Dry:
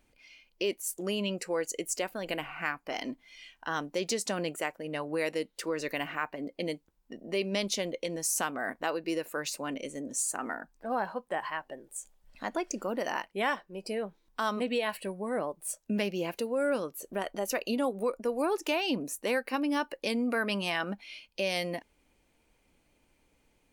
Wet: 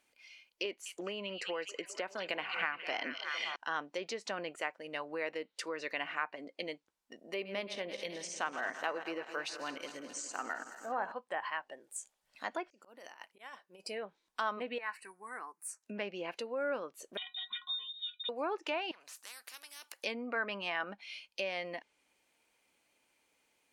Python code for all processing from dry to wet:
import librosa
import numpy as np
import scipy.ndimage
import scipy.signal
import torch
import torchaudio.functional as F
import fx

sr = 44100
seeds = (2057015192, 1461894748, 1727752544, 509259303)

y = fx.chain(x, sr, fx.echo_stepped(ms=207, hz=3600.0, octaves=-0.7, feedback_pct=70, wet_db=-6.5),
    fx.band_squash(depth_pct=100), at=(0.65, 3.56))
y = fx.chain(y, sr, fx.reverse_delay_fb(ms=107, feedback_pct=77, wet_db=-12),
    fx.resample_bad(factor=3, down='filtered', up='hold'), at=(7.33, 11.12))
y = fx.chain(y, sr, fx.auto_swell(attack_ms=763.0),
    fx.high_shelf(hz=8400.0, db=4.5),
    fx.over_compress(threshold_db=-46.0, ratio=-0.5), at=(12.66, 13.84))
y = fx.chain(y, sr, fx.highpass(hz=390.0, slope=12),
    fx.fixed_phaser(hz=1400.0, stages=4), at=(14.78, 15.83))
y = fx.chain(y, sr, fx.freq_invert(carrier_hz=3900),
    fx.stiff_resonator(f0_hz=220.0, decay_s=0.26, stiffness=0.03),
    fx.band_squash(depth_pct=100), at=(17.17, 18.29))
y = fx.chain(y, sr, fx.highpass(hz=900.0, slope=12),
    fx.spectral_comp(ratio=4.0), at=(18.91, 20.04))
y = fx.env_lowpass_down(y, sr, base_hz=2000.0, full_db=-27.0)
y = fx.highpass(y, sr, hz=1000.0, slope=6)